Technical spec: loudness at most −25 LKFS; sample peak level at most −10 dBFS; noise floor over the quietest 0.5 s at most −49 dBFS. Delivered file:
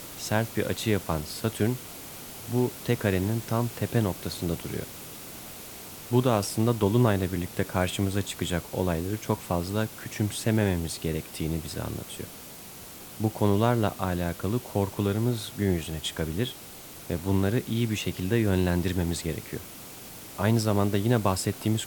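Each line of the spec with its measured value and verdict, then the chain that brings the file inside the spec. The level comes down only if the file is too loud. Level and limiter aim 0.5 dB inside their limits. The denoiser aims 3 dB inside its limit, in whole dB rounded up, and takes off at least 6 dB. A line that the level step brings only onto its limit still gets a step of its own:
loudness −28.0 LKFS: in spec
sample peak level −8.0 dBFS: out of spec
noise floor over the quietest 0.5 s −44 dBFS: out of spec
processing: broadband denoise 8 dB, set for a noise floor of −44 dBFS
brickwall limiter −10.5 dBFS

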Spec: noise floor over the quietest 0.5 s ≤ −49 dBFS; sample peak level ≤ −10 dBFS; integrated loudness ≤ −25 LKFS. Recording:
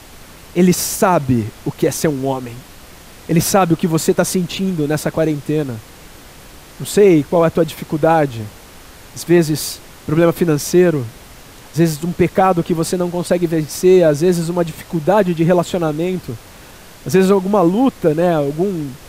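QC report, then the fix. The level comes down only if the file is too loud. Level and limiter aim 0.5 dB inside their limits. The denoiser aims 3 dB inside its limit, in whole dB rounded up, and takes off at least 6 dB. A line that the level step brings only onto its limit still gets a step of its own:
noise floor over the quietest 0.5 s −39 dBFS: out of spec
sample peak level −2.5 dBFS: out of spec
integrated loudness −16.0 LKFS: out of spec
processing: broadband denoise 6 dB, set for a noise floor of −39 dBFS
level −9.5 dB

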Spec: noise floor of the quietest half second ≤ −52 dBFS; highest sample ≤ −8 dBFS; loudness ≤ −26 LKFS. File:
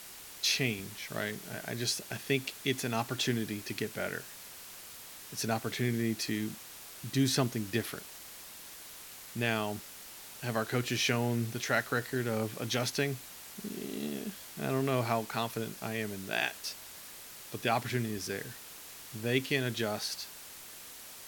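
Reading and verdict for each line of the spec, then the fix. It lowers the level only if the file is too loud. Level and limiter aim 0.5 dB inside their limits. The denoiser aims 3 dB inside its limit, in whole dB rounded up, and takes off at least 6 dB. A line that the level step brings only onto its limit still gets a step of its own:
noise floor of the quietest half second −48 dBFS: out of spec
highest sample −15.0 dBFS: in spec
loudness −33.5 LKFS: in spec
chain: broadband denoise 7 dB, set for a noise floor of −48 dBFS

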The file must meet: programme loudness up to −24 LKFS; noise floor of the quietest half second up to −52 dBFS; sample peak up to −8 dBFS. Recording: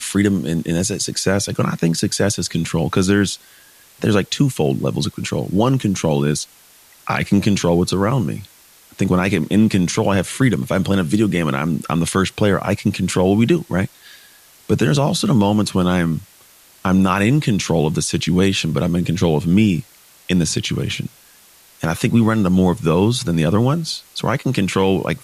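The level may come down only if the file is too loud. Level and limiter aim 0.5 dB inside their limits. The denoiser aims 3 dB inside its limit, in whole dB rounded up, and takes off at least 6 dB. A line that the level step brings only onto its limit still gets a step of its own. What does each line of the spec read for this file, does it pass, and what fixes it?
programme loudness −18.0 LKFS: out of spec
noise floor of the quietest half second −49 dBFS: out of spec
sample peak −4.0 dBFS: out of spec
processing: level −6.5 dB

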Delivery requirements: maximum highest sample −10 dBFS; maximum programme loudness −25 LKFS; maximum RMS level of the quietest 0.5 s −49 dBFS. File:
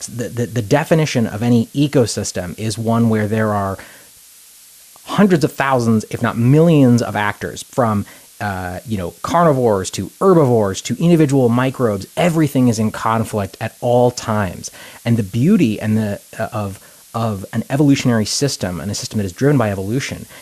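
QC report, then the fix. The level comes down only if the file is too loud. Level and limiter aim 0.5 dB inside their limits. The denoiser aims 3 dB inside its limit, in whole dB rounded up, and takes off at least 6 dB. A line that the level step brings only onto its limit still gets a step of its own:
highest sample −2.0 dBFS: out of spec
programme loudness −16.5 LKFS: out of spec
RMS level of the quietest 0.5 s −44 dBFS: out of spec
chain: level −9 dB

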